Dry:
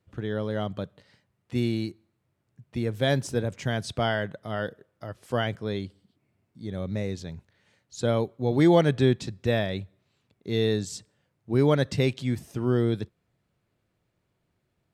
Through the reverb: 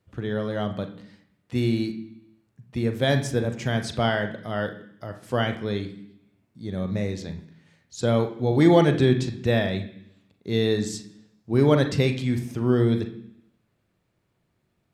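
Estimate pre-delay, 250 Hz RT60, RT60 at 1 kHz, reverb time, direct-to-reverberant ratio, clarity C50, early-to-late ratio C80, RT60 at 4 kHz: 37 ms, 0.90 s, 0.70 s, 0.70 s, 6.0 dB, 11.0 dB, 14.0 dB, 0.95 s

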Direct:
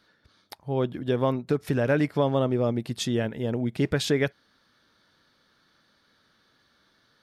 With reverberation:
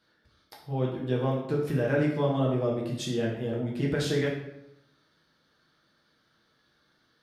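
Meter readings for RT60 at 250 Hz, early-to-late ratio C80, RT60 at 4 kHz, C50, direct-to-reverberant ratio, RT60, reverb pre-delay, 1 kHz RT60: 0.95 s, 7.0 dB, 0.60 s, 4.0 dB, −3.5 dB, 0.85 s, 6 ms, 0.80 s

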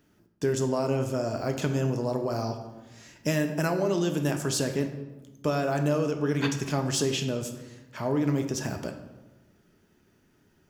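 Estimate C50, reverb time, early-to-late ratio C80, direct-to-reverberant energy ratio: 8.5 dB, 1.1 s, 10.5 dB, 5.0 dB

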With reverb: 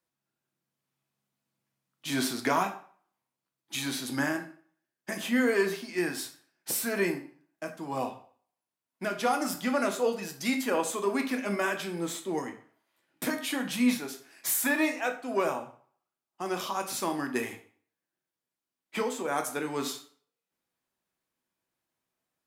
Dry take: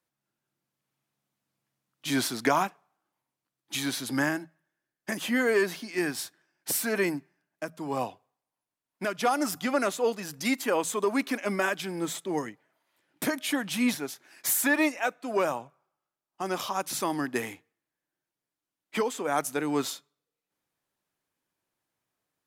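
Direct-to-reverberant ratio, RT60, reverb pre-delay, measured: 4.0 dB, 0.50 s, 6 ms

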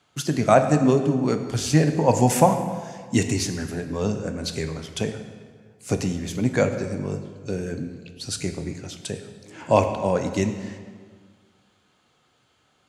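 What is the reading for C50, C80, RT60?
8.5 dB, 9.5 dB, 1.8 s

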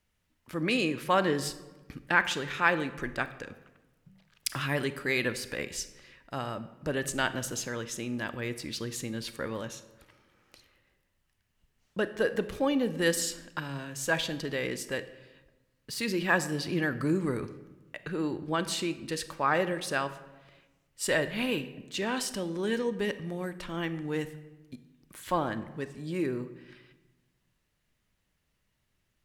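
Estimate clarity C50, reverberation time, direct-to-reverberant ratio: 14.0 dB, 1.2 s, 12.0 dB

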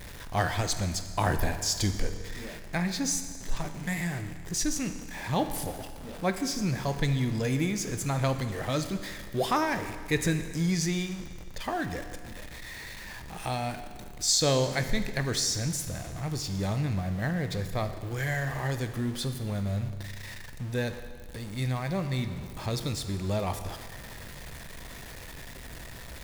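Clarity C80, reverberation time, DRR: 10.5 dB, 1.8 s, 8.0 dB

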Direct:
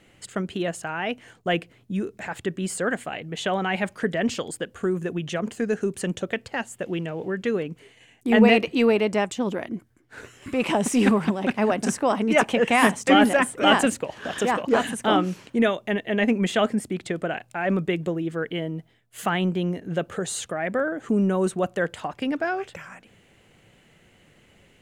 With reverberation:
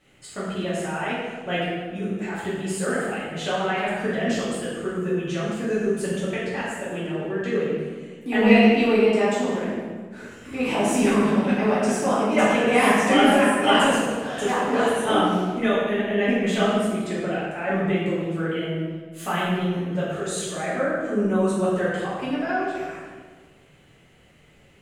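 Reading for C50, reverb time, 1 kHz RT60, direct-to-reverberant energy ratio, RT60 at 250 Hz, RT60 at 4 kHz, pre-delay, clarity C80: −1.0 dB, 1.5 s, 1.4 s, −10.5 dB, 1.9 s, 1.1 s, 3 ms, 1.0 dB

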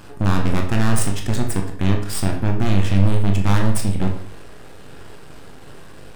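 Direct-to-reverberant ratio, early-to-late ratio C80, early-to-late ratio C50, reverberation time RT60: 2.0 dB, 11.0 dB, 7.0 dB, 0.55 s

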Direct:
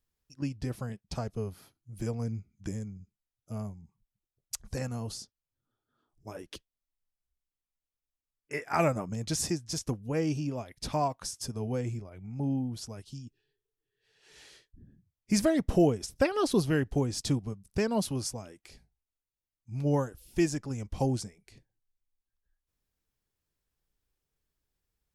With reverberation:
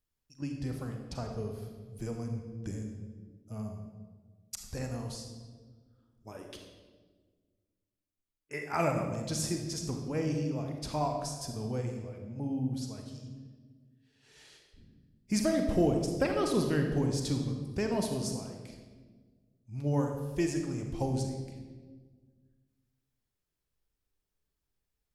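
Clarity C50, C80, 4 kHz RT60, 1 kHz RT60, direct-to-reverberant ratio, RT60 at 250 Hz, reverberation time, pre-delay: 4.5 dB, 6.5 dB, 1.1 s, 1.2 s, 3.0 dB, 2.2 s, 1.5 s, 34 ms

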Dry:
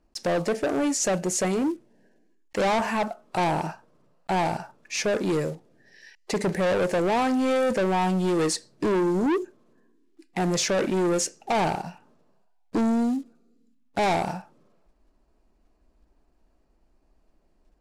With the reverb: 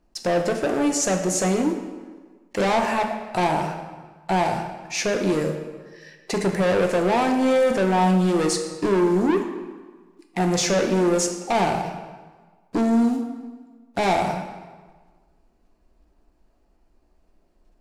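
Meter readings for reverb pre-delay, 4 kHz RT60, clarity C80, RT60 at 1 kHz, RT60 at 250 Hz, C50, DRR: 3 ms, 1.1 s, 8.5 dB, 1.5 s, 1.5 s, 7.0 dB, 4.0 dB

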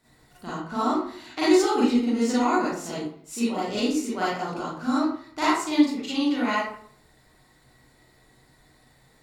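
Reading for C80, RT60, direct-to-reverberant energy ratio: 4.5 dB, 0.55 s, −9.5 dB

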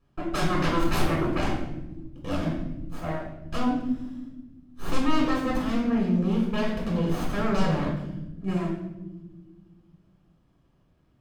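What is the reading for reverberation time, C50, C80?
non-exponential decay, 3.5 dB, 6.5 dB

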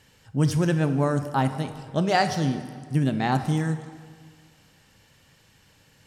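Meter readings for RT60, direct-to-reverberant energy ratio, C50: 1.8 s, 8.5 dB, 10.0 dB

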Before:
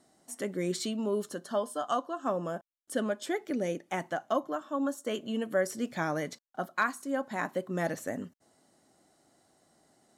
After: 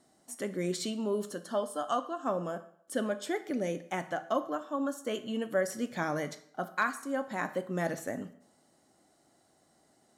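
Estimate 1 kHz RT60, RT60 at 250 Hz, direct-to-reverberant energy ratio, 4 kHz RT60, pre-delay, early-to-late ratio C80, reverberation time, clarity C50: 0.65 s, 0.65 s, 11.0 dB, 0.55 s, 16 ms, 17.5 dB, 0.65 s, 14.0 dB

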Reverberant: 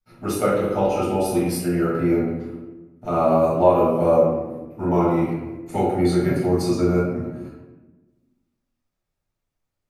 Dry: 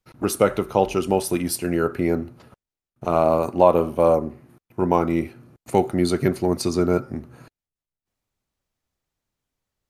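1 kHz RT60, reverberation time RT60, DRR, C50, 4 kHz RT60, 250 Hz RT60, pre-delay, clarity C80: 1.0 s, 1.2 s, −10.5 dB, 0.0 dB, 0.65 s, 1.7 s, 4 ms, 3.5 dB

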